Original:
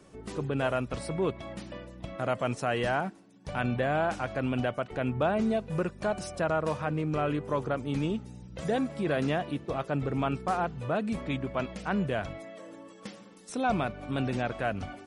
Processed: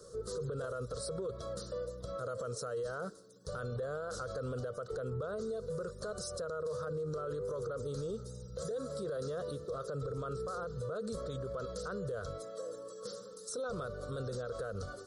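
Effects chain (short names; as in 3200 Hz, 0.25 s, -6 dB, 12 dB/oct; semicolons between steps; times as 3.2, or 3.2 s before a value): EQ curve 120 Hz 0 dB, 310 Hz -13 dB, 480 Hz +14 dB, 820 Hz -18 dB, 1300 Hz +7 dB, 2400 Hz -29 dB, 4100 Hz +7 dB; limiter -31.5 dBFS, peak gain reduction 20 dB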